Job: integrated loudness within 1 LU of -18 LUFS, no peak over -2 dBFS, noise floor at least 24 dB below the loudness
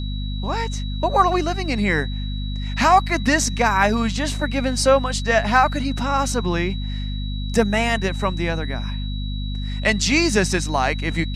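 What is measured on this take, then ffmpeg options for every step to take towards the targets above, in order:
hum 50 Hz; harmonics up to 250 Hz; hum level -23 dBFS; steady tone 3900 Hz; tone level -36 dBFS; loudness -21.0 LUFS; peak -3.0 dBFS; loudness target -18.0 LUFS
-> -af "bandreject=f=50:t=h:w=6,bandreject=f=100:t=h:w=6,bandreject=f=150:t=h:w=6,bandreject=f=200:t=h:w=6,bandreject=f=250:t=h:w=6"
-af "bandreject=f=3.9k:w=30"
-af "volume=3dB,alimiter=limit=-2dB:level=0:latency=1"

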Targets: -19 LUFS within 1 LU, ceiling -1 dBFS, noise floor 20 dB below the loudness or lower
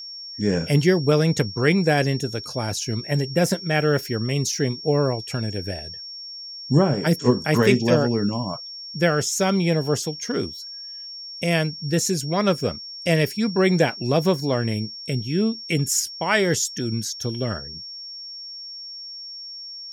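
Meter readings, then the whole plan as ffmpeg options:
steady tone 5500 Hz; tone level -34 dBFS; loudness -22.0 LUFS; peak -3.0 dBFS; loudness target -19.0 LUFS
-> -af "bandreject=f=5.5k:w=30"
-af "volume=3dB,alimiter=limit=-1dB:level=0:latency=1"

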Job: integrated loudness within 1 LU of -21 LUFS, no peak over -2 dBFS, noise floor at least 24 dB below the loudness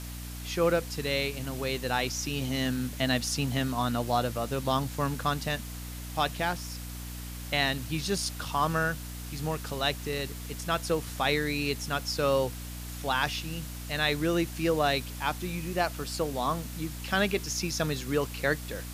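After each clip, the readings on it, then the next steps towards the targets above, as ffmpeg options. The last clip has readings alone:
hum 60 Hz; harmonics up to 300 Hz; hum level -37 dBFS; noise floor -39 dBFS; noise floor target -54 dBFS; loudness -30.0 LUFS; peak -12.0 dBFS; loudness target -21.0 LUFS
-> -af "bandreject=f=60:t=h:w=6,bandreject=f=120:t=h:w=6,bandreject=f=180:t=h:w=6,bandreject=f=240:t=h:w=6,bandreject=f=300:t=h:w=6"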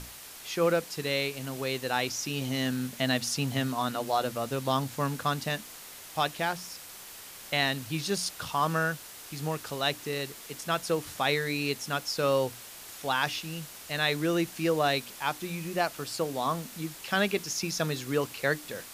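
hum none; noise floor -46 dBFS; noise floor target -54 dBFS
-> -af "afftdn=nr=8:nf=-46"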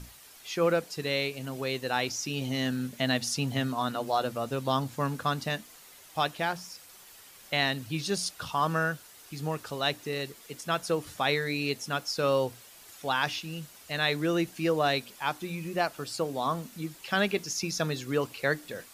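noise floor -52 dBFS; noise floor target -55 dBFS
-> -af "afftdn=nr=6:nf=-52"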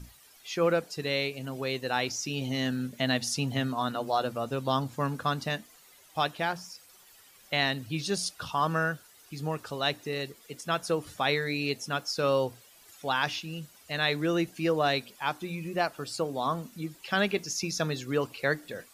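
noise floor -57 dBFS; loudness -30.5 LUFS; peak -12.5 dBFS; loudness target -21.0 LUFS
-> -af "volume=9.5dB"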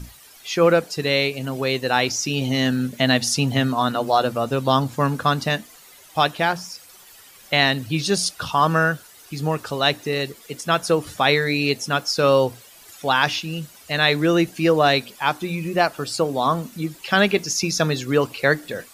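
loudness -21.0 LUFS; peak -3.0 dBFS; noise floor -47 dBFS

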